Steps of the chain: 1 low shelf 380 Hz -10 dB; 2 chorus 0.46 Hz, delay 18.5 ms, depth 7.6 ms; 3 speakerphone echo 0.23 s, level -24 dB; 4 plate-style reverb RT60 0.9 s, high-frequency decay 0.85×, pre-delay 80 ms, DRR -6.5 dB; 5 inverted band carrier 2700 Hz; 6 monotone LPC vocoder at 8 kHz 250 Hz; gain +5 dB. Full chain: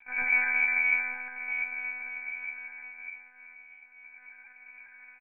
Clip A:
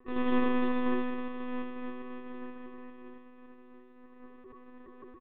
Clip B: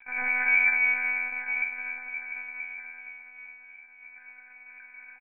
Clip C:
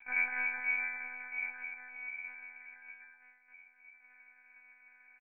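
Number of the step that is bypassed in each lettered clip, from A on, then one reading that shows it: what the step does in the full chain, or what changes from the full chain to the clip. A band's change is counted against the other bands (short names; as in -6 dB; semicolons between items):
5, momentary loudness spread change +6 LU; 2, momentary loudness spread change +5 LU; 4, loudness change -8.0 LU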